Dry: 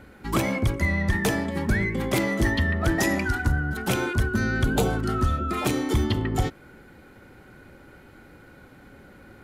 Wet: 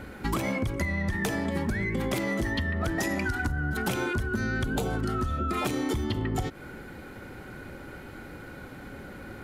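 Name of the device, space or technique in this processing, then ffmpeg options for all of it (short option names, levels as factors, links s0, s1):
serial compression, leveller first: -af "acompressor=threshold=0.0562:ratio=6,acompressor=threshold=0.0251:ratio=6,volume=2.11"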